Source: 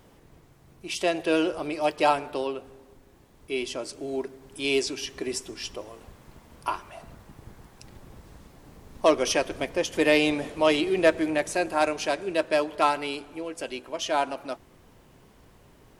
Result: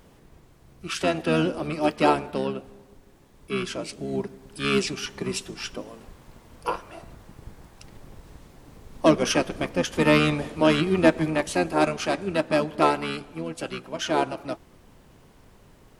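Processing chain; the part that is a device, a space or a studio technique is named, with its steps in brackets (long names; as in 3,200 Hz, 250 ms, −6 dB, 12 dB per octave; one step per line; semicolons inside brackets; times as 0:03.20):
octave pedal (pitch-shifted copies added −12 semitones −3 dB)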